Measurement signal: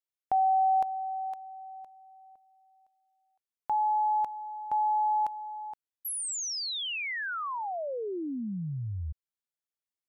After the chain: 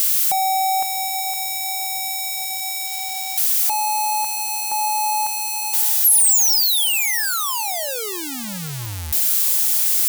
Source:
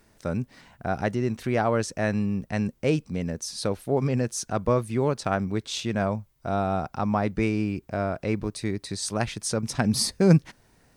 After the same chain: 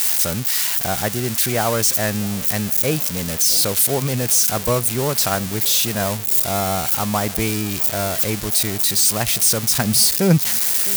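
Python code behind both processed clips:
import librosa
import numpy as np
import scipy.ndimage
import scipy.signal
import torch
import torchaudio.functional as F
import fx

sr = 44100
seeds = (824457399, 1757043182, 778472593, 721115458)

y = x + 0.5 * 10.0 ** (-15.0 / 20.0) * np.diff(np.sign(x), prepend=np.sign(x[:1]))
y = fx.echo_tape(y, sr, ms=660, feedback_pct=84, wet_db=-20.5, lp_hz=2500.0, drive_db=5.0, wow_cents=20)
y = fx.dynamic_eq(y, sr, hz=290.0, q=1.0, threshold_db=-39.0, ratio=4.0, max_db=-4)
y = F.gain(torch.from_numpy(y), 4.5).numpy()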